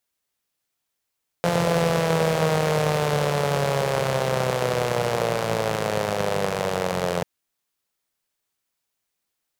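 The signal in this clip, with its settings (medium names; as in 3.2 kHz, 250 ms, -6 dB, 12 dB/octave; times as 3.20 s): four-cylinder engine model, changing speed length 5.79 s, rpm 5200, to 2600, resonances 160/490 Hz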